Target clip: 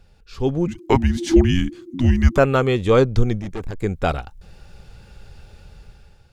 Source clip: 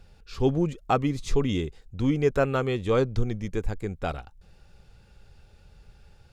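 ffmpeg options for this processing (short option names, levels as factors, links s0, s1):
-filter_complex "[0:a]dynaudnorm=f=290:g=5:m=3.35,asettb=1/sr,asplit=3[s0][s1][s2];[s0]atrim=end=0.674[s3];[s1]atrim=start=0.67:end=2.38,asetpts=PTS-STARTPTS,afade=t=in:d=0.004:c=qsin,afade=t=out:st=1.706:d=0.004:c=qsin,afreqshift=-360[s4];[s2]atrim=start=2.376[s5];[s3][s4]acrossfade=d=0.004:c1=hsin:c2=qsin[s6];[s6][s5]acrossfade=d=0.004:c1=qsin:c2=hsin,asettb=1/sr,asplit=3[s7][s8][s9];[s7]atrim=end=3.404[s10];[s8]atrim=start=3.4:end=3.82,asetpts=PTS-STARTPTS,afade=t=in:d=0.004:c=qsin,afade=t=out:st=0.416:d=0.004:c=qsin,aeval=exprs='(tanh(17.8*val(0)+0.3)-tanh(0.3))/17.8':c=same[s11];[s9]atrim=start=3.816[s12];[s10][s11]acrossfade=d=0.004:c1=hsin:c2=qsin[s13];[s13][s12]acrossfade=d=0.004:c1=qsin:c2=hsin"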